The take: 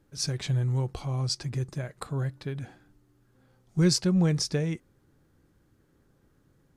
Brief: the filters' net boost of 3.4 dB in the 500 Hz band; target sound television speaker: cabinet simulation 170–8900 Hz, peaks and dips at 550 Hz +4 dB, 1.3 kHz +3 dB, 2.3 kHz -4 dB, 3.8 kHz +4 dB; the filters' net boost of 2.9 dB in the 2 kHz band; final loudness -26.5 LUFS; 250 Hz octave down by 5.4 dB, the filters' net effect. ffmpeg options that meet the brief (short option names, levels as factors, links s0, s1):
-af "highpass=f=170:w=0.5412,highpass=f=170:w=1.3066,equalizer=f=550:t=q:w=4:g=4,equalizer=f=1300:t=q:w=4:g=3,equalizer=f=2300:t=q:w=4:g=-4,equalizer=f=3800:t=q:w=4:g=4,lowpass=f=8900:w=0.5412,lowpass=f=8900:w=1.3066,equalizer=f=250:t=o:g=-8,equalizer=f=500:t=o:g=5,equalizer=f=2000:t=o:g=4,volume=1.68"